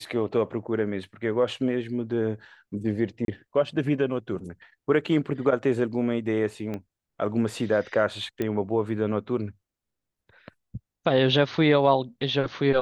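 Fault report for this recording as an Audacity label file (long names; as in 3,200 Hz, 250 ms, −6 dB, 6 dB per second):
3.250000	3.280000	drop-out 32 ms
6.740000	6.740000	click −21 dBFS
8.420000	8.420000	click −16 dBFS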